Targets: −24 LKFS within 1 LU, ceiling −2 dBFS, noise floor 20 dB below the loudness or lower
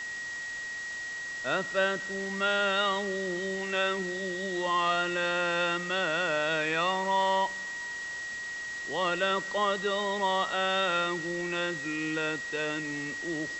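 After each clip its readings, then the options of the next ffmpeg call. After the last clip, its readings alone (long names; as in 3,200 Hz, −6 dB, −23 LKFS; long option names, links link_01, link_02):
interfering tone 1,900 Hz; level of the tone −35 dBFS; background noise floor −38 dBFS; target noise floor −50 dBFS; integrated loudness −29.5 LKFS; sample peak −14.0 dBFS; target loudness −24.0 LKFS
→ -af "bandreject=frequency=1900:width=30"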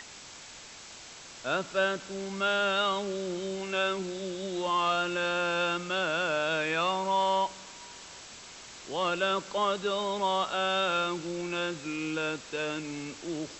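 interfering tone none found; background noise floor −48 dBFS; target noise floor −50 dBFS
→ -af "afftdn=noise_reduction=6:noise_floor=-48"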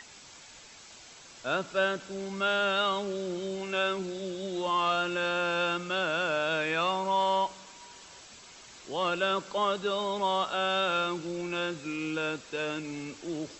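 background noise floor −51 dBFS; integrated loudness −30.0 LKFS; sample peak −15.0 dBFS; target loudness −24.0 LKFS
→ -af "volume=6dB"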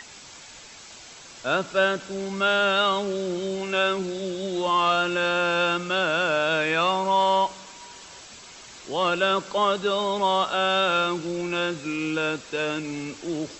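integrated loudness −24.0 LKFS; sample peak −9.0 dBFS; background noise floor −45 dBFS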